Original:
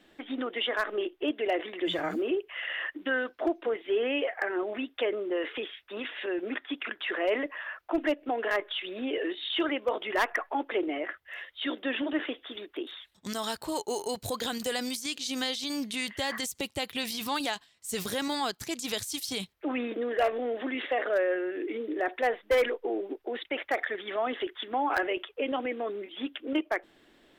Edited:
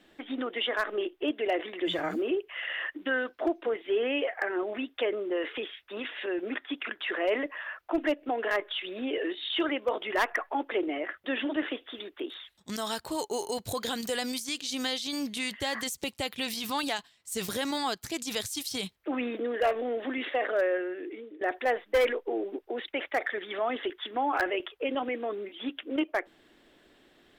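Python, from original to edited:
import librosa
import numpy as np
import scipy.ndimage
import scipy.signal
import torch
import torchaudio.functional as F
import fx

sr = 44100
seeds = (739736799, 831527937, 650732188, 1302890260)

y = fx.edit(x, sr, fx.cut(start_s=11.24, length_s=0.57),
    fx.fade_out_to(start_s=21.27, length_s=0.71, floor_db=-18.0), tone=tone)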